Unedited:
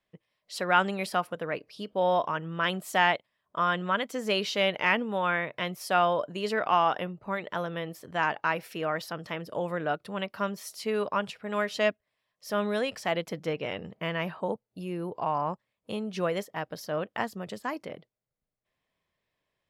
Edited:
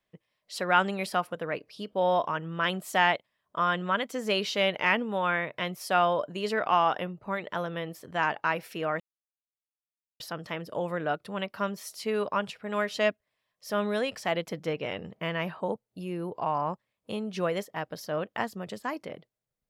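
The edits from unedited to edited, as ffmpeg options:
-filter_complex "[0:a]asplit=2[a][b];[a]atrim=end=9,asetpts=PTS-STARTPTS,afade=t=out:st=8.996:d=0.004:c=hsin,apad=pad_dur=1.2[c];[b]atrim=start=9,asetpts=PTS-STARTPTS,afade=t=in:d=0.004:c=hsin[d];[c][d]concat=n=2:v=0:a=1"

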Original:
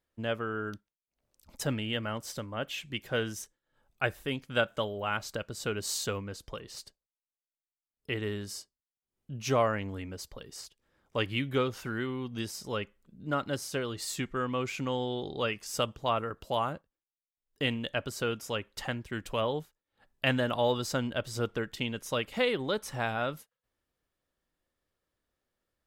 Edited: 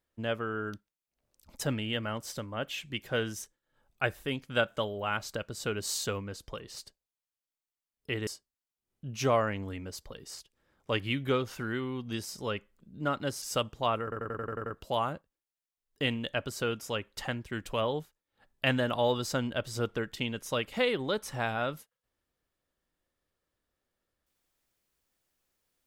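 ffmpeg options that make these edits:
-filter_complex "[0:a]asplit=10[a][b][c][d][e][f][g][h][i][j];[a]atrim=end=8.272[k];[b]atrim=start=8.528:end=13.682[l];[c]atrim=start=15.648:end=16.352[m];[d]atrim=start=16.258:end=16.352[n];[e]atrim=start=16.258:end=16.352[o];[f]atrim=start=16.258:end=16.352[p];[g]atrim=start=16.258:end=16.352[q];[h]atrim=start=16.258:end=16.352[r];[i]atrim=start=16.258:end=16.352[s];[j]atrim=start=16.258[t];[k][l]acrossfade=d=0.004:c1=hsin:c2=hsin[u];[u][m]acrossfade=d=0.004:c1=hsin:c2=hsin[v];[v][n]acrossfade=d=0.004:c1=hsin:c2=hsin[w];[w][o]acrossfade=d=0.004:c1=hsin:c2=hsin[x];[x][p]acrossfade=d=0.004:c1=hsin:c2=hsin[y];[y][q]acrossfade=d=0.004:c1=hsin:c2=hsin[z];[z][r]acrossfade=d=0.004:c1=hsin:c2=hsin[aa];[aa][s]acrossfade=d=0.004:c1=hsin:c2=hsin[ab];[ab][t]acrossfade=d=0.004:c1=hsin:c2=hsin"

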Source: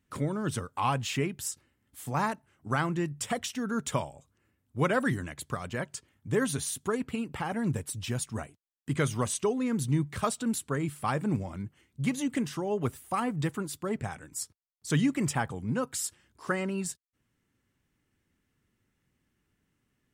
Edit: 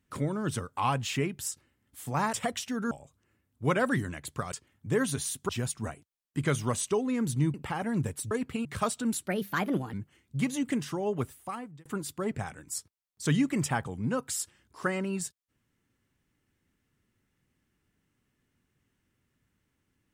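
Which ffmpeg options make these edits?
-filter_complex "[0:a]asplit=11[a][b][c][d][e][f][g][h][i][j][k];[a]atrim=end=2.332[l];[b]atrim=start=3.198:end=3.782[m];[c]atrim=start=4.048:end=5.662[n];[d]atrim=start=5.928:end=6.902[o];[e]atrim=start=8.008:end=10.062[p];[f]atrim=start=7.238:end=8.012[q];[g]atrim=start=6.898:end=7.242[r];[h]atrim=start=10.058:end=10.674[s];[i]atrim=start=10.67:end=11.58,asetpts=PTS-STARTPTS,asetrate=59535,aresample=44100[t];[j]atrim=start=11.576:end=13.5,asetpts=PTS-STARTPTS,afade=t=out:st=1.154:d=0.77[u];[k]atrim=start=13.5,asetpts=PTS-STARTPTS,afade=t=in:d=0.004:c=hsin[v];[l][m]acrossfade=d=0.004:c1=hsin:c2=hsin[w];[w][n]acrossfade=d=0.004:c1=hsin:c2=hsin[x];[x][o]acrossfade=d=0.004:c1=hsin:c2=hsin[y];[y][p]acrossfade=d=0.004:c1=hsin:c2=hsin[z];[z][q]acrossfade=d=0.004:c1=hsin:c2=hsin[aa];[aa][r]acrossfade=d=0.004:c1=hsin:c2=hsin[ab];[ab][s]acrossfade=d=0.004:c1=hsin:c2=hsin[ac];[ac][t]acrossfade=d=0.004:c1=hsin:c2=hsin[ad];[u][v]concat=n=2:v=0:a=1[ae];[ad][ae]acrossfade=d=0.004:c1=hsin:c2=hsin"

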